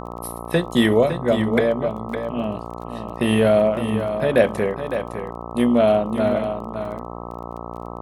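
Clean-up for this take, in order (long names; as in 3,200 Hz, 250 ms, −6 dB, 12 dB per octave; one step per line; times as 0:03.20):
click removal
hum removal 58.6 Hz, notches 22
echo removal 559 ms −9 dB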